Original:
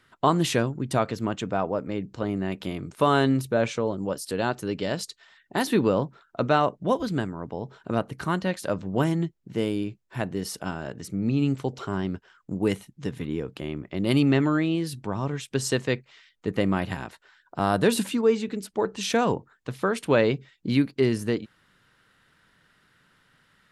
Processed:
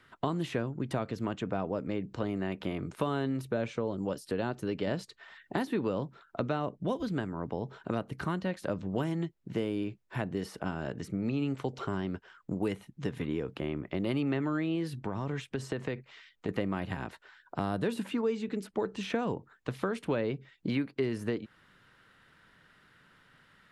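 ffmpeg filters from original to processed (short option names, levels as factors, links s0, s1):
-filter_complex "[0:a]asettb=1/sr,asplit=3[s0][s1][s2];[s0]atrim=end=14.924[s3];[s1]atrim=start=14.92:end=16.49,asetpts=PTS-STARTPTS,afade=t=in:d=0.004:c=qsin,afade=t=out:st=1.566:d=0.004:c=qsin,acompressor=threshold=0.0398:ratio=6:attack=3.2:release=140:knee=1:detection=peak[s4];[s2]atrim=start=16.486[s5];[s3][s4]acrossfade=d=0.004:c1=hsin:c2=qsin[s6];[s6][s5]acrossfade=d=0.004:c1=qsin:c2=hsin,asplit=3[s7][s8][s9];[s7]atrim=end=4.872[s10];[s8]atrim=start=4.868:end=5.652,asetpts=PTS-STARTPTS,volume=1.5[s11];[s9]atrim=start=5.648[s12];[s10][s11]acrossfade=d=0.004:c1=hsin:c2=hsin[s13];[s13][s12]acrossfade=d=0.004:c1=hsin:c2=hsin,bass=f=250:g=-1,treble=f=4000:g=-6,acrossover=split=410|2500[s14][s15][s16];[s14]acompressor=threshold=0.02:ratio=4[s17];[s15]acompressor=threshold=0.0126:ratio=4[s18];[s16]acompressor=threshold=0.00224:ratio=4[s19];[s17][s18][s19]amix=inputs=3:normalize=0,volume=1.19"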